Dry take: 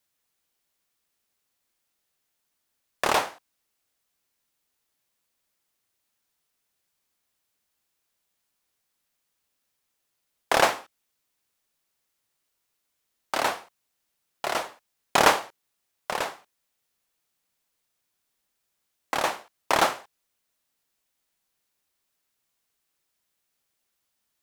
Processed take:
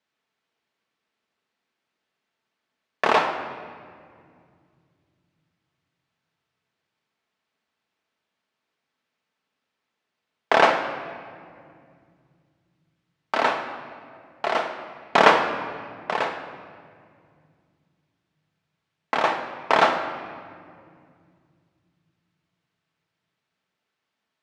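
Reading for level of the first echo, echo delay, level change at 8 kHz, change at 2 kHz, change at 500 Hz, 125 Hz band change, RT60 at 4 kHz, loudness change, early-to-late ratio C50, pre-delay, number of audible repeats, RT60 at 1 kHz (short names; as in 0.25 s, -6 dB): none, none, -10.5 dB, +4.5 dB, +5.0 dB, +3.0 dB, 1.4 s, +2.5 dB, 7.0 dB, 5 ms, none, 2.0 s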